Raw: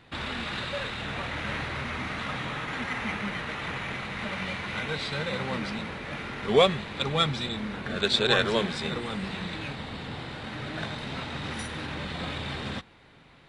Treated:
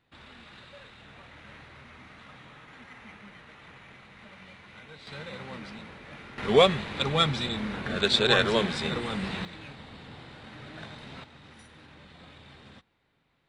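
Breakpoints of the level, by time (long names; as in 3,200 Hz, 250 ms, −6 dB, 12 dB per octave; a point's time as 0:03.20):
−16.5 dB
from 0:05.07 −9.5 dB
from 0:06.38 +1 dB
from 0:09.45 −9 dB
from 0:11.24 −17 dB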